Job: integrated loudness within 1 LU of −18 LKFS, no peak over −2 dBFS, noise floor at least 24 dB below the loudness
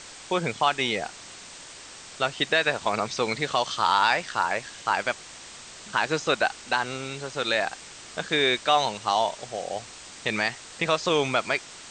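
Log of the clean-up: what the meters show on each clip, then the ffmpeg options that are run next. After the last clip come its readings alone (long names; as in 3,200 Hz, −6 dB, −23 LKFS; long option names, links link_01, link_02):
background noise floor −44 dBFS; target noise floor −50 dBFS; integrated loudness −26.0 LKFS; sample peak −7.0 dBFS; target loudness −18.0 LKFS
→ -af "afftdn=noise_reduction=6:noise_floor=-44"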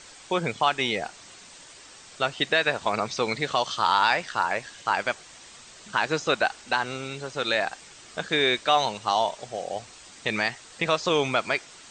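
background noise floor −48 dBFS; target noise floor −50 dBFS
→ -af "afftdn=noise_reduction=6:noise_floor=-48"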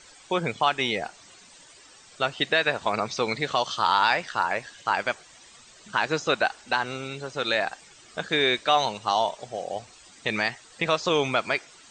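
background noise floor −52 dBFS; integrated loudness −26.0 LKFS; sample peak −7.0 dBFS; target loudness −18.0 LKFS
→ -af "volume=8dB,alimiter=limit=-2dB:level=0:latency=1"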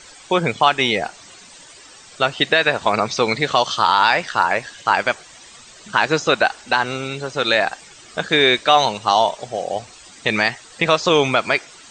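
integrated loudness −18.5 LKFS; sample peak −2.0 dBFS; background noise floor −44 dBFS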